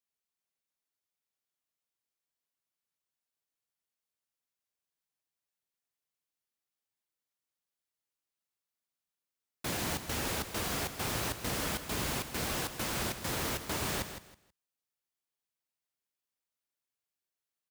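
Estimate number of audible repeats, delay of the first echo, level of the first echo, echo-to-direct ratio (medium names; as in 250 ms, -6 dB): 2, 161 ms, -10.0 dB, -10.0 dB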